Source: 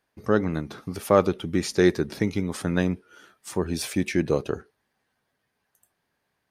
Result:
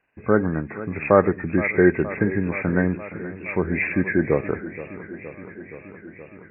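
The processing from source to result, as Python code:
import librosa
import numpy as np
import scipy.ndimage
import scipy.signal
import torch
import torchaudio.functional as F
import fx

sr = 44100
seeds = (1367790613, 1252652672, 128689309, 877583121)

y = fx.freq_compress(x, sr, knee_hz=1500.0, ratio=4.0)
y = fx.echo_warbled(y, sr, ms=471, feedback_pct=75, rate_hz=2.8, cents=87, wet_db=-15.0)
y = y * 10.0 ** (3.0 / 20.0)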